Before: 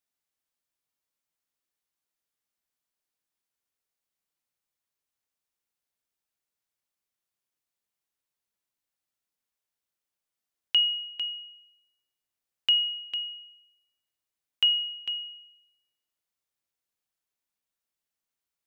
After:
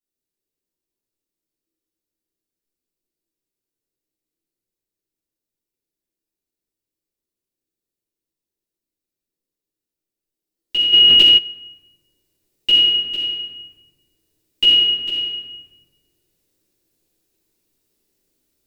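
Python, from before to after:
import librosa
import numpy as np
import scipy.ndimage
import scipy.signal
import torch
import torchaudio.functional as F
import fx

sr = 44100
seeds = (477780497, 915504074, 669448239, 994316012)

p1 = x + fx.echo_banded(x, sr, ms=87, feedback_pct=56, hz=1200.0, wet_db=-3.5, dry=0)
p2 = fx.rider(p1, sr, range_db=10, speed_s=2.0)
p3 = fx.peak_eq(p2, sr, hz=370.0, db=13.0, octaves=0.8)
p4 = fx.noise_reduce_blind(p3, sr, reduce_db=8)
p5 = fx.peak_eq(p4, sr, hz=1200.0, db=-14.5, octaves=2.6)
p6 = fx.room_shoebox(p5, sr, seeds[0], volume_m3=700.0, walls='mixed', distance_m=9.6)
p7 = fx.env_flatten(p6, sr, amount_pct=100, at=(10.92, 11.37), fade=0.02)
y = p7 * 10.0 ** (-1.0 / 20.0)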